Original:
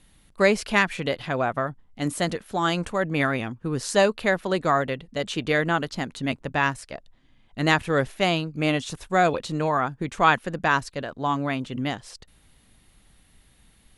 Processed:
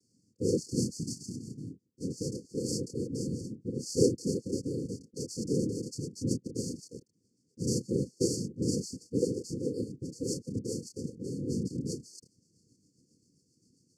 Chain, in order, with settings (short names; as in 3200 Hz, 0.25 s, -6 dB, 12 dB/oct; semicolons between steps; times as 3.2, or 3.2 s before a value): 0.97–1.78 spectral repair 240–1500 Hz; 7.59–8.58 transient shaper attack +6 dB, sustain -4 dB; chorus voices 6, 0.33 Hz, delay 28 ms, depth 2.6 ms; rotary speaker horn 0.65 Hz, later 7.5 Hz, at 4.85; noise vocoder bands 4; brick-wall FIR band-stop 530–4300 Hz